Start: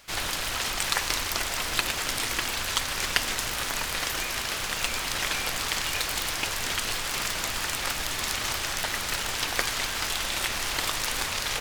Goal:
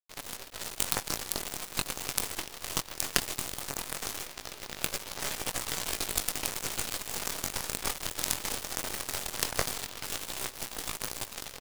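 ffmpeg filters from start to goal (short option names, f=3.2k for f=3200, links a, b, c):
-af "afwtdn=0.0126,firequalizer=gain_entry='entry(200,0);entry(390,7);entry(1600,-5);entry(7400,5);entry(14000,12)':delay=0.05:min_phase=1,dynaudnorm=f=510:g=7:m=3.5dB,flanger=delay=17.5:depth=5:speed=0.18,acrusher=bits=3:dc=4:mix=0:aa=0.000001,aeval=exprs='sgn(val(0))*max(abs(val(0))-0.0299,0)':c=same,volume=4dB"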